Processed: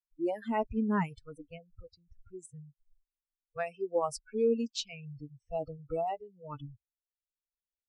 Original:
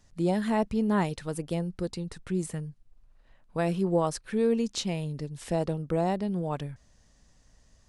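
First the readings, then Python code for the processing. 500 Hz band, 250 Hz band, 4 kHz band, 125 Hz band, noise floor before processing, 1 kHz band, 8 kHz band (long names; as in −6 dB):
−4.0 dB, −7.5 dB, −4.5 dB, −12.5 dB, −62 dBFS, −3.5 dB, −7.0 dB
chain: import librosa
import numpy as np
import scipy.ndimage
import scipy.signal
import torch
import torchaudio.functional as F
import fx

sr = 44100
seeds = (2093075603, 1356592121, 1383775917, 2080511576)

y = fx.bin_expand(x, sr, power=2.0)
y = fx.env_lowpass(y, sr, base_hz=1500.0, full_db=-25.5)
y = fx.noise_reduce_blind(y, sr, reduce_db=27)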